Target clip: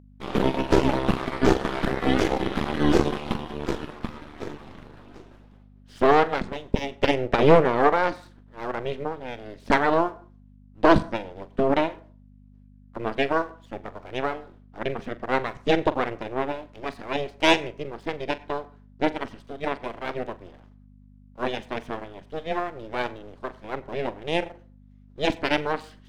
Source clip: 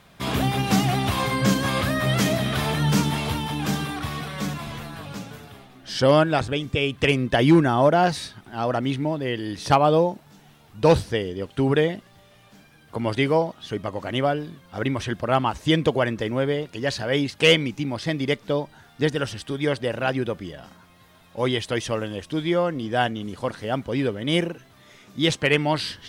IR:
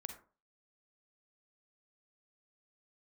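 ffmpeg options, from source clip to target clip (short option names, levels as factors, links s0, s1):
-filter_complex "[0:a]agate=range=0.0224:threshold=0.0112:ratio=3:detection=peak,aemphasis=mode=reproduction:type=riaa,aeval=exprs='1.06*(cos(1*acos(clip(val(0)/1.06,-1,1)))-cos(1*PI/2))+0.0944*(cos(4*acos(clip(val(0)/1.06,-1,1)))-cos(4*PI/2))+0.119*(cos(7*acos(clip(val(0)/1.06,-1,1)))-cos(7*PI/2))':c=same,aeval=exprs='abs(val(0))':c=same,aeval=exprs='val(0)+0.01*(sin(2*PI*50*n/s)+sin(2*PI*2*50*n/s)/2+sin(2*PI*3*50*n/s)/3+sin(2*PI*4*50*n/s)/4+sin(2*PI*5*50*n/s)/5)':c=same,lowshelf=f=220:g=-12,asplit=2[s0][s1];[1:a]atrim=start_sample=2205,adelay=43[s2];[s1][s2]afir=irnorm=-1:irlink=0,volume=0.266[s3];[s0][s3]amix=inputs=2:normalize=0"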